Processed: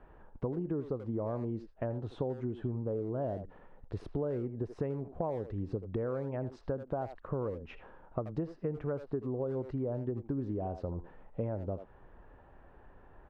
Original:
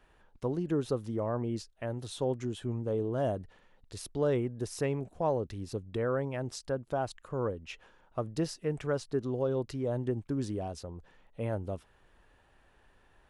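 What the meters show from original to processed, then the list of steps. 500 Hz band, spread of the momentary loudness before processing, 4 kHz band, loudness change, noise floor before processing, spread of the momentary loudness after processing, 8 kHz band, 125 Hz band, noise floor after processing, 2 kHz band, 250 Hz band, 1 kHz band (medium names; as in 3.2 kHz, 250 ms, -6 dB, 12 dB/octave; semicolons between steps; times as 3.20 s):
-3.5 dB, 9 LU, under -15 dB, -3.0 dB, -65 dBFS, 6 LU, under -25 dB, -1.5 dB, -58 dBFS, -9.5 dB, -2.0 dB, -4.5 dB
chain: low-pass 1.1 kHz 12 dB/octave; speakerphone echo 80 ms, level -12 dB; compression 10:1, threshold -40 dBFS, peak gain reduction 15.5 dB; trim +8.5 dB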